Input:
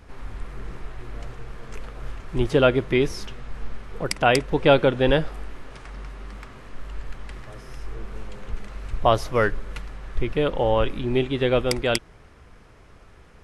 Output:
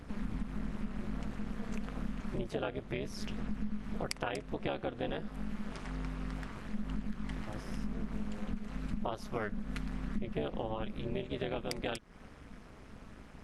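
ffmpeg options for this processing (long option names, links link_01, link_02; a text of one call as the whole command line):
ffmpeg -i in.wav -af "acompressor=threshold=-31dB:ratio=8,aphaser=in_gain=1:out_gain=1:delay=4.3:decay=0.21:speed=0.29:type=triangular,tremolo=f=210:d=0.974,volume=1dB" out.wav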